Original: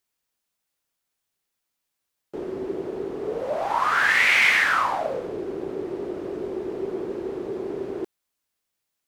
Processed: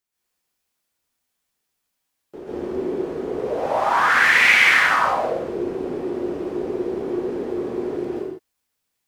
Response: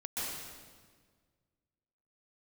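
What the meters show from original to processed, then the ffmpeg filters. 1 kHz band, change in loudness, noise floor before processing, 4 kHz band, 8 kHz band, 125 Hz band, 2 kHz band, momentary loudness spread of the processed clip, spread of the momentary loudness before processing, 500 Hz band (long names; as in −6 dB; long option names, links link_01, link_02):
+4.5 dB, +4.0 dB, −81 dBFS, +4.0 dB, +3.5 dB, +4.5 dB, +4.5 dB, 15 LU, 16 LU, +4.0 dB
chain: -filter_complex "[1:a]atrim=start_sample=2205,afade=type=out:start_time=0.39:duration=0.01,atrim=end_sample=17640[link_01];[0:a][link_01]afir=irnorm=-1:irlink=0,volume=1dB"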